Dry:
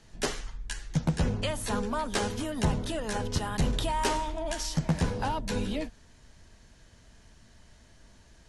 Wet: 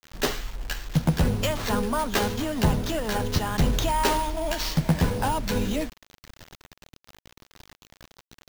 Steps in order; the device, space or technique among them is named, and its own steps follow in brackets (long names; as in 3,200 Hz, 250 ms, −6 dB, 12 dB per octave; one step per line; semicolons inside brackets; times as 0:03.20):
early 8-bit sampler (sample-rate reduction 10,000 Hz, jitter 0%; bit reduction 8 bits)
level +5 dB